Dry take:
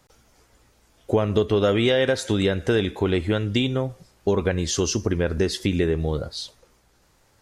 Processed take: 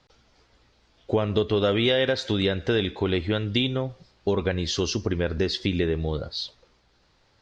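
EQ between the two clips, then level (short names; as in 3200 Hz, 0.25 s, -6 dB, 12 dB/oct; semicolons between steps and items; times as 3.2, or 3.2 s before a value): ladder low-pass 5200 Hz, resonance 40%; +5.5 dB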